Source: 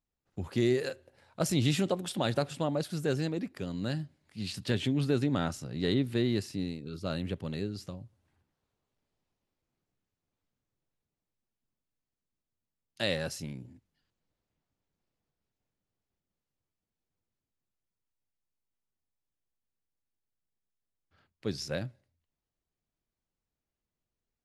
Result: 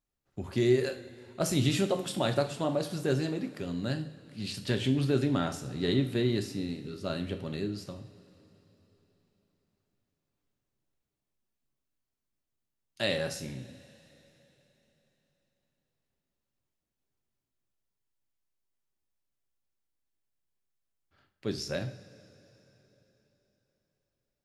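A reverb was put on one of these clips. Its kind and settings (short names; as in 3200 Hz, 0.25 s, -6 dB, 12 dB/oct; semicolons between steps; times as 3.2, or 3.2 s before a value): two-slope reverb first 0.47 s, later 3.8 s, from -18 dB, DRR 5.5 dB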